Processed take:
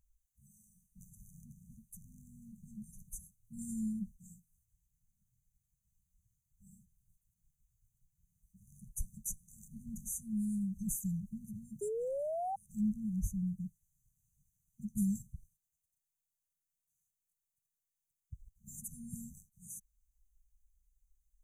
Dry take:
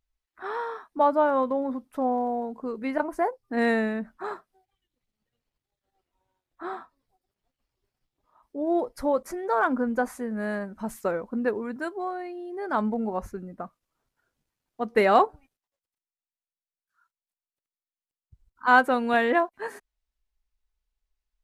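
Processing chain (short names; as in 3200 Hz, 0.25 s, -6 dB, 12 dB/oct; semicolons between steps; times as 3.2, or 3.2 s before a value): brick-wall FIR band-stop 200–5900 Hz; painted sound rise, 11.81–12.56, 400–800 Hz -44 dBFS; gain +7.5 dB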